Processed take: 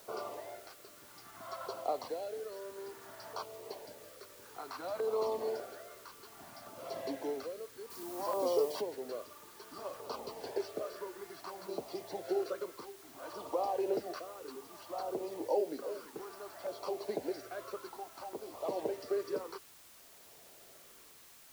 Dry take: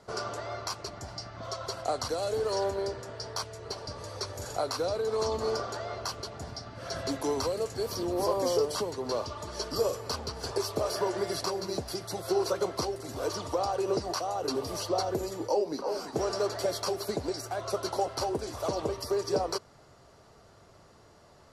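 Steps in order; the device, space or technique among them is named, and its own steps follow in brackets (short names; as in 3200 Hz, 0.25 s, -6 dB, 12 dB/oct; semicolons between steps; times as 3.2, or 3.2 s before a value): shortwave radio (BPF 310–2500 Hz; tremolo 0.58 Hz, depth 69%; LFO notch saw down 0.6 Hz 400–2000 Hz; white noise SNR 18 dB); 7.9–8.81 high shelf 5900 Hz +10 dB; gain -2 dB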